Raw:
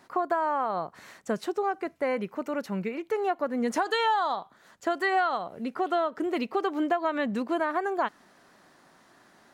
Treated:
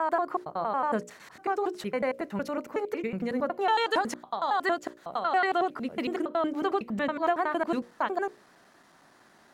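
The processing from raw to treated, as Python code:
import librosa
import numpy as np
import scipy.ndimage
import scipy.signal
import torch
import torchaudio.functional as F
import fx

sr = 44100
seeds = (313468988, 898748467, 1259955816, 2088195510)

y = fx.block_reorder(x, sr, ms=92.0, group=5)
y = fx.hum_notches(y, sr, base_hz=60, count=10)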